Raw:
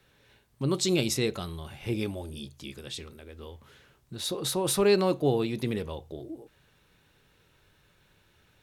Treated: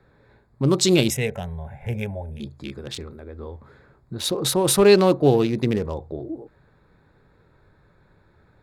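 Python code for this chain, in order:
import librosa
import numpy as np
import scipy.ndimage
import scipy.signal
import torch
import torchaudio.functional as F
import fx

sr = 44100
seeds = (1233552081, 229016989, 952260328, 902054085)

y = fx.wiener(x, sr, points=15)
y = fx.fixed_phaser(y, sr, hz=1200.0, stages=6, at=(1.1, 2.4))
y = y * 10.0 ** (8.5 / 20.0)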